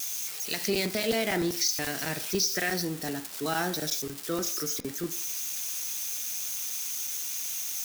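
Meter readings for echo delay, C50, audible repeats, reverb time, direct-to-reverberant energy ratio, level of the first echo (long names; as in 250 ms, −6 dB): no echo audible, 14.0 dB, no echo audible, 0.60 s, 9.0 dB, no echo audible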